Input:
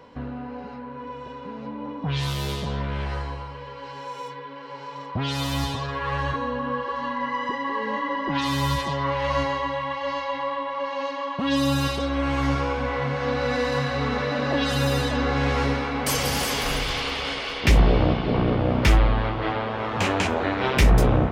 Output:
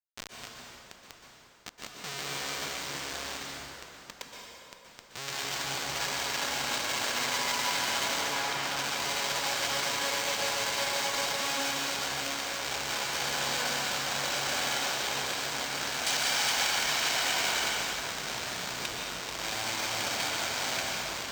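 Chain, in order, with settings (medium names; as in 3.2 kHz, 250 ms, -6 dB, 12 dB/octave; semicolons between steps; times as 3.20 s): comb filter that takes the minimum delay 1.3 ms; compression 16:1, threshold -25 dBFS, peak gain reduction 14 dB; Schmitt trigger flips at -29 dBFS; frequency weighting ITU-R 468; hard clipper -22.5 dBFS, distortion -12 dB; 8.21–8.63 s: treble shelf 4.2 kHz -10 dB; plate-style reverb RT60 3.3 s, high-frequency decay 0.7×, pre-delay 110 ms, DRR -2.5 dB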